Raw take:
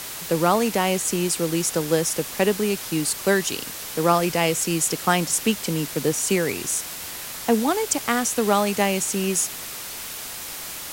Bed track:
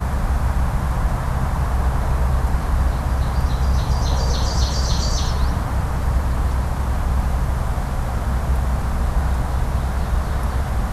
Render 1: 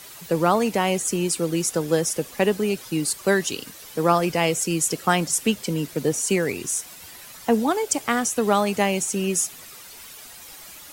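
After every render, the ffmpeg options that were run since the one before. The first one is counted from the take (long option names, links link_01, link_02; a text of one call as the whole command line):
ffmpeg -i in.wav -af "afftdn=noise_reduction=11:noise_floor=-34" out.wav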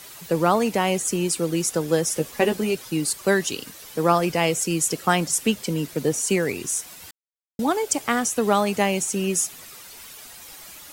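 ffmpeg -i in.wav -filter_complex "[0:a]asettb=1/sr,asplit=3[link_01][link_02][link_03];[link_01]atrim=end=2.104[link_04];[link_02]atrim=start=2.1:end=2.75,asetpts=PTS-STARTPTS,afade=type=in:duration=0.004:curve=qsin,afade=type=out:start_time=0.646:duration=0.004:curve=qsin,asplit=2[link_05][link_06];[link_06]adelay=13,volume=-5dB[link_07];[link_05][link_07]amix=inputs=2:normalize=0,atrim=end_sample=28665[link_08];[link_03]atrim=start=2.746[link_09];[link_04][link_08]acrossfade=duration=0.004:curve1=hsin:curve2=qsin[link_10];[link_10][link_09]acrossfade=duration=0.004:curve1=qsin:curve2=hsin,asplit=3[link_11][link_12][link_13];[link_11]atrim=end=7.11,asetpts=PTS-STARTPTS,afade=type=out:start_time=7.106:duration=0.004:curve=hsin[link_14];[link_12]atrim=start=7.11:end=7.59,asetpts=PTS-STARTPTS,volume=0[link_15];[link_13]atrim=start=7.59,asetpts=PTS-STARTPTS,afade=type=in:duration=0.004:curve=hsin[link_16];[link_14][link_15][link_16]concat=n=3:v=0:a=1" out.wav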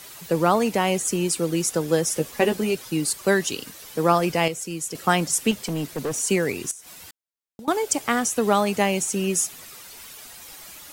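ffmpeg -i in.wav -filter_complex "[0:a]asettb=1/sr,asplit=3[link_01][link_02][link_03];[link_01]atrim=end=5.514[link_04];[link_02]atrim=start=5.51:end=6.2,asetpts=PTS-STARTPTS,afade=type=in:duration=0.004:curve=qsin,afade=type=out:start_time=0.686:duration=0.004:curve=qsin,asoftclip=type=hard:threshold=-23dB[link_05];[link_03]atrim=start=6.196[link_06];[link_04][link_05]acrossfade=duration=0.004:curve1=hsin:curve2=qsin[link_07];[link_07][link_06]acrossfade=duration=0.004:curve1=qsin:curve2=hsin,asettb=1/sr,asplit=3[link_08][link_09][link_10];[link_08]atrim=end=6.714[link_11];[link_09]atrim=start=6.71:end=7.68,asetpts=PTS-STARTPTS,afade=type=in:duration=0.004:curve=qsin,afade=type=out:start_time=0.966:duration=0.004:curve=qsin,acompressor=threshold=-38dB:ratio=8:attack=3.2:release=140:knee=1:detection=peak[link_12];[link_10]atrim=start=7.676[link_13];[link_11][link_12]acrossfade=duration=0.004:curve1=hsin:curve2=qsin[link_14];[link_14][link_13]acrossfade=duration=0.004:curve1=qsin:curve2=hsin,asplit=3[link_15][link_16][link_17];[link_15]atrim=end=4.482[link_18];[link_16]atrim=start=4.478:end=4.952,asetpts=PTS-STARTPTS,volume=-7.5dB[link_19];[link_17]atrim=start=4.948[link_20];[link_18][link_19]acrossfade=duration=0.004:curve1=hsin:curve2=hsin[link_21];[link_21][link_20]acrossfade=duration=0.004:curve1=hsin:curve2=hsin" out.wav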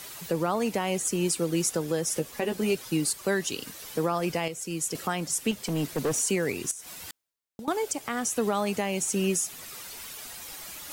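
ffmpeg -i in.wav -af "alimiter=limit=-16.5dB:level=0:latency=1:release=373,areverse,acompressor=mode=upward:threshold=-37dB:ratio=2.5,areverse" out.wav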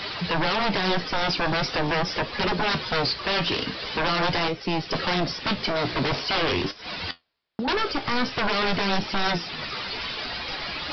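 ffmpeg -i in.wav -af "aresample=11025,aeval=exprs='0.158*sin(PI/2*5.62*val(0)/0.158)':channel_layout=same,aresample=44100,flanger=delay=9.2:depth=8.8:regen=62:speed=0.44:shape=triangular" out.wav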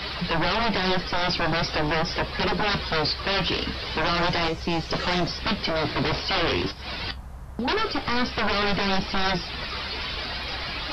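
ffmpeg -i in.wav -i bed.wav -filter_complex "[1:a]volume=-19.5dB[link_01];[0:a][link_01]amix=inputs=2:normalize=0" out.wav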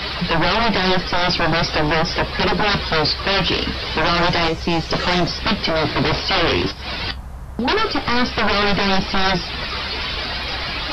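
ffmpeg -i in.wav -af "volume=6.5dB" out.wav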